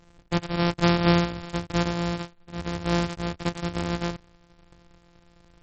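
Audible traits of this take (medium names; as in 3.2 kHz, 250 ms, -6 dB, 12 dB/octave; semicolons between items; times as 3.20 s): a buzz of ramps at a fixed pitch in blocks of 256 samples; MP3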